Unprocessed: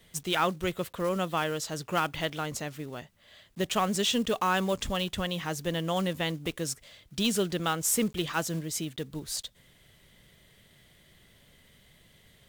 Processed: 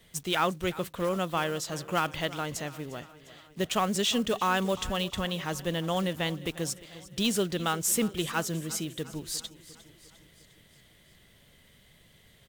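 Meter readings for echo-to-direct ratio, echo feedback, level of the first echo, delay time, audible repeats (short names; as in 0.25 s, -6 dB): -16.0 dB, 58%, -18.0 dB, 0.352 s, 4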